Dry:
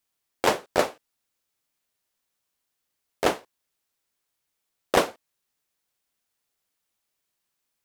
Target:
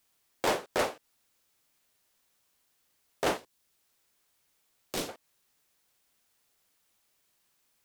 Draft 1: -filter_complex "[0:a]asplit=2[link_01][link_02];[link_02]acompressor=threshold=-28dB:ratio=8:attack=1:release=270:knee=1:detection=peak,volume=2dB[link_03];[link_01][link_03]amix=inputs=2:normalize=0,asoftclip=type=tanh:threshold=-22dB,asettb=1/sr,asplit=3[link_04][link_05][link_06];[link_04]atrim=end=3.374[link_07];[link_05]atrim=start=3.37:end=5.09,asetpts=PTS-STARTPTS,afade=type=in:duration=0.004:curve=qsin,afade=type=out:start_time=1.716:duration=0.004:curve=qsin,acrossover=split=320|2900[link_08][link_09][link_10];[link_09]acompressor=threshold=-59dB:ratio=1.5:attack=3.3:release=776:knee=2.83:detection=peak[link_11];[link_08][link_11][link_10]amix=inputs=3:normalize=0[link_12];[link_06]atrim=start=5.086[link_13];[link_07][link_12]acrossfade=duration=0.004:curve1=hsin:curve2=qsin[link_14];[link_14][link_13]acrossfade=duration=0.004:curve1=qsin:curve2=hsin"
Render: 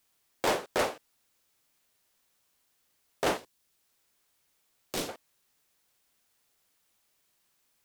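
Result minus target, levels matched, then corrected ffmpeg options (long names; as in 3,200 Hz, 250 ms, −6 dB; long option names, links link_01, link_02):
downward compressor: peak gain reduction −10 dB
-filter_complex "[0:a]asplit=2[link_01][link_02];[link_02]acompressor=threshold=-39.5dB:ratio=8:attack=1:release=270:knee=1:detection=peak,volume=2dB[link_03];[link_01][link_03]amix=inputs=2:normalize=0,asoftclip=type=tanh:threshold=-22dB,asettb=1/sr,asplit=3[link_04][link_05][link_06];[link_04]atrim=end=3.374[link_07];[link_05]atrim=start=3.37:end=5.09,asetpts=PTS-STARTPTS,afade=type=in:duration=0.004:curve=qsin,afade=type=out:start_time=1.716:duration=0.004:curve=qsin,acrossover=split=320|2900[link_08][link_09][link_10];[link_09]acompressor=threshold=-59dB:ratio=1.5:attack=3.3:release=776:knee=2.83:detection=peak[link_11];[link_08][link_11][link_10]amix=inputs=3:normalize=0[link_12];[link_06]atrim=start=5.086[link_13];[link_07][link_12]acrossfade=duration=0.004:curve1=hsin:curve2=qsin[link_14];[link_14][link_13]acrossfade=duration=0.004:curve1=qsin:curve2=hsin"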